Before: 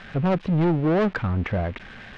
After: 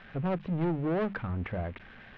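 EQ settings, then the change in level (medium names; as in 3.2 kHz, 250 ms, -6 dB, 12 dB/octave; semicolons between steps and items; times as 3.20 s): low-pass 3.4 kHz 12 dB/octave; hum notches 50/100/150/200 Hz; -8.5 dB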